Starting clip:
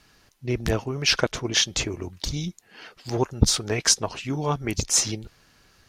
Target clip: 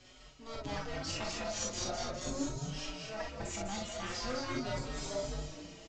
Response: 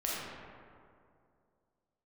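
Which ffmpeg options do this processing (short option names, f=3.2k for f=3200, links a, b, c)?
-filter_complex "[0:a]areverse,acompressor=threshold=-32dB:ratio=16,areverse,asetrate=80880,aresample=44100,atempo=0.545254,aresample=16000,aeval=exprs='clip(val(0),-1,0.00501)':c=same,aresample=44100,asplit=8[a][b][c][d][e][f][g][h];[b]adelay=203,afreqshift=-150,volume=-4dB[i];[c]adelay=406,afreqshift=-300,volume=-9.2dB[j];[d]adelay=609,afreqshift=-450,volume=-14.4dB[k];[e]adelay=812,afreqshift=-600,volume=-19.6dB[l];[f]adelay=1015,afreqshift=-750,volume=-24.8dB[m];[g]adelay=1218,afreqshift=-900,volume=-30dB[n];[h]adelay=1421,afreqshift=-1050,volume=-35.2dB[o];[a][i][j][k][l][m][n][o]amix=inputs=8:normalize=0[p];[1:a]atrim=start_sample=2205,atrim=end_sample=3087[q];[p][q]afir=irnorm=-1:irlink=0,asplit=2[r][s];[s]adelay=5,afreqshift=0.42[t];[r][t]amix=inputs=2:normalize=1,volume=4dB"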